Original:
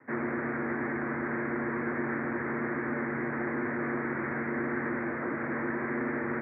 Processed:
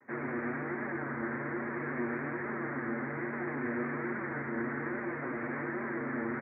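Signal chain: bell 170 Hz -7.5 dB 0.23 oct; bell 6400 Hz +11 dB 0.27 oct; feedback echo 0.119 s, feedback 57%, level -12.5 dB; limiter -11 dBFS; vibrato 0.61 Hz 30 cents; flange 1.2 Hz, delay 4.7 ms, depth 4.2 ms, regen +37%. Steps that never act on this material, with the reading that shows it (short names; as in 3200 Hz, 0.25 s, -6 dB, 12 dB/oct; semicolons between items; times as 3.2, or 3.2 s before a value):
bell 6400 Hz: input band ends at 2300 Hz; limiter -11 dBFS: input peak -20.5 dBFS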